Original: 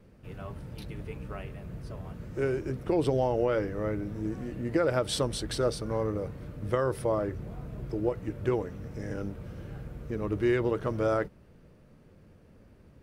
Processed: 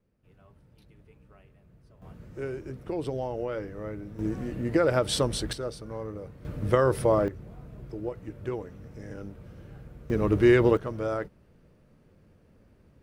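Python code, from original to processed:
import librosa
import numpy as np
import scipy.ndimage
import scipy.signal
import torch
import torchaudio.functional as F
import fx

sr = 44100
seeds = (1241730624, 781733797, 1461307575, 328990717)

y = fx.gain(x, sr, db=fx.steps((0.0, -17.0), (2.02, -5.5), (4.19, 3.0), (5.53, -6.5), (6.45, 5.5), (7.28, -5.0), (10.1, 7.0), (10.77, -3.0)))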